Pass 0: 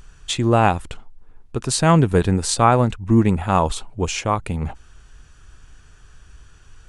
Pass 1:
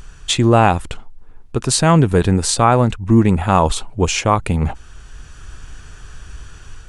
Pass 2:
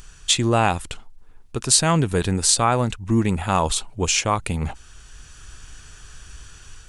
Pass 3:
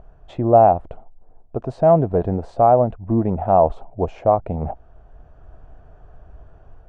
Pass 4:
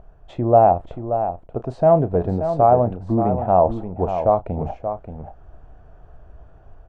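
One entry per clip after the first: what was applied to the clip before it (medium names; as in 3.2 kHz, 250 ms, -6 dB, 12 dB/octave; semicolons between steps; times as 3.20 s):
in parallel at +2.5 dB: peak limiter -10 dBFS, peak gain reduction 7.5 dB; on the sum: level rider gain up to 3.5 dB
treble shelf 2.4 kHz +10.5 dB; trim -7.5 dB
resonant low-pass 670 Hz, resonance Q 5.8; trim -1 dB
doubling 33 ms -14 dB; delay 580 ms -9 dB; trim -1 dB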